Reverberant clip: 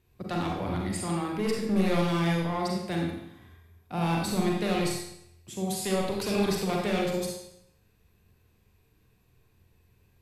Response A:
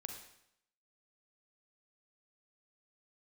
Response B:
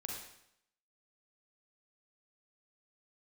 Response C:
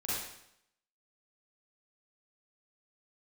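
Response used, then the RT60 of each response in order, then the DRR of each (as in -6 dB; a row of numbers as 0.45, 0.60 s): B; 0.75, 0.75, 0.75 s; 3.5, -1.5, -9.5 dB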